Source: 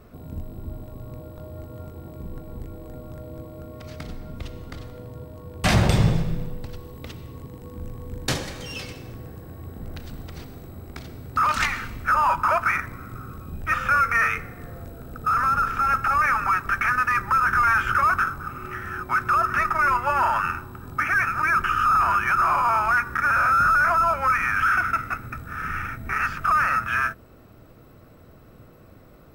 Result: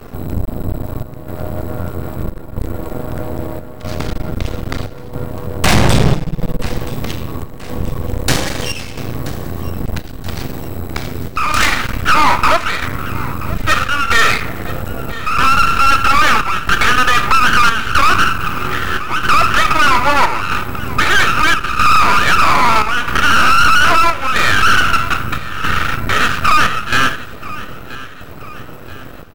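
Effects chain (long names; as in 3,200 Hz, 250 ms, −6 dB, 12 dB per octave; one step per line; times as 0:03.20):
on a send at −8.5 dB: convolution reverb, pre-delay 18 ms
on the sum: half-wave rectification
square-wave tremolo 0.78 Hz, depth 65%, duty 80%
in parallel at −1.5 dB: downward compressor, threshold −33 dBFS, peak gain reduction 17.5 dB
on the sum: repeating echo 979 ms, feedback 47%, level −19 dB
sine wavefolder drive 5 dB, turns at −6.5 dBFS
level +5 dB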